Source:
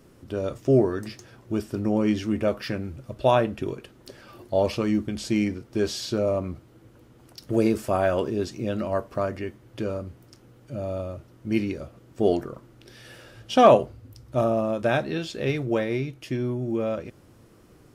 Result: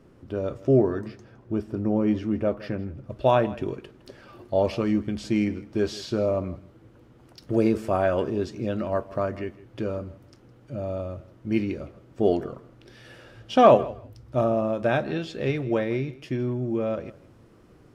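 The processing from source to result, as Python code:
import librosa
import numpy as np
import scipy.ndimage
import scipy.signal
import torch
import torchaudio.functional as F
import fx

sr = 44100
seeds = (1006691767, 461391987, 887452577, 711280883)

y = fx.lowpass(x, sr, hz=fx.steps((0.0, 2000.0), (1.01, 1100.0), (3.1, 3200.0)), slope=6)
y = fx.echo_feedback(y, sr, ms=162, feedback_pct=15, wet_db=-19.0)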